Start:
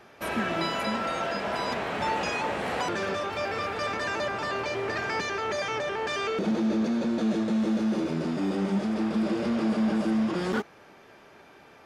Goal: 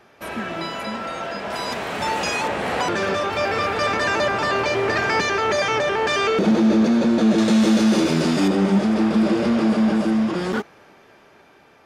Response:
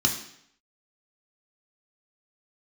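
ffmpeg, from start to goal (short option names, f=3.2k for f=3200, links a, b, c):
-filter_complex "[0:a]asettb=1/sr,asplit=3[a][b][c];[a]atrim=end=7.384[d];[b]atrim=start=7.38:end=8.48,asetpts=PTS-STARTPTS,afade=t=in:d=0.004:c=qsin,afade=t=out:st=1.096:d=0.004:c=qsin,highshelf=f=2.5k:g=11[e];[c]atrim=start=8.476[f];[d][e]acrossfade=d=0.004:c1=hsin:c2=qsin[g];[g][f]acrossfade=d=0.004:c1=qsin:c2=hsin,dynaudnorm=f=580:g=9:m=9.5dB,asettb=1/sr,asplit=3[h][i][j];[h]atrim=end=1.504[k];[i]atrim=start=1.5:end=2.48,asetpts=PTS-STARTPTS,afade=t=in:d=0.004:c=qsin,afade=t=out:st=0.976:d=0.004:c=qsin,highshelf=f=5.5k:g=11.5[l];[j]atrim=start=2.476[m];[k][l]acrossfade=d=0.004:c1=hsin:c2=qsin[n];[n][m]acrossfade=d=0.004:c1=qsin:c2=hsin"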